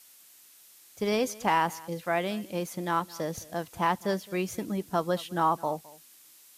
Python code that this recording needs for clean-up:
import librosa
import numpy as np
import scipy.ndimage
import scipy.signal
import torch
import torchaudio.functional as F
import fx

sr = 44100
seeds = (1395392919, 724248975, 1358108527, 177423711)

y = fx.noise_reduce(x, sr, print_start_s=0.12, print_end_s=0.62, reduce_db=19.0)
y = fx.fix_echo_inverse(y, sr, delay_ms=213, level_db=-21.5)